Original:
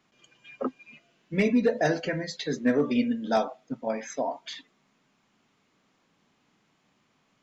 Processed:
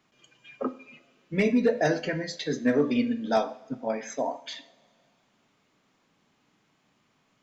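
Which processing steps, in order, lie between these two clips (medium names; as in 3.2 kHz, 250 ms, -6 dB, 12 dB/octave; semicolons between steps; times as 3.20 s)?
two-slope reverb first 0.53 s, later 2.4 s, from -17 dB, DRR 12.5 dB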